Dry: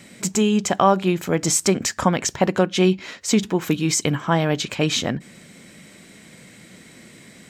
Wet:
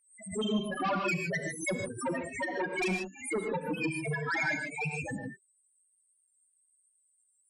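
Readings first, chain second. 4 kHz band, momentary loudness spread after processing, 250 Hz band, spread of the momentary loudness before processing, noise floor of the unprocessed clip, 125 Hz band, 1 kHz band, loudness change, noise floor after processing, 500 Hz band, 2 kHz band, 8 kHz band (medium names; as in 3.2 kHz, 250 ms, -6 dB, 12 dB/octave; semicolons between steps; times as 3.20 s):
-16.0 dB, 5 LU, -14.5 dB, 5 LU, -47 dBFS, -14.5 dB, -12.5 dB, -12.0 dB, -73 dBFS, -13.0 dB, -3.0 dB, -19.5 dB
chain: spectral peaks clipped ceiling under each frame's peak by 24 dB; peaking EQ 9.9 kHz +5 dB 0.58 oct; loudest bins only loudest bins 1; resonant high shelf 2.9 kHz -9 dB, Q 3; Chebyshev shaper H 5 -14 dB, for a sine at -23 dBFS; gated-style reverb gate 170 ms rising, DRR 3 dB; swell ahead of each attack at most 120 dB/s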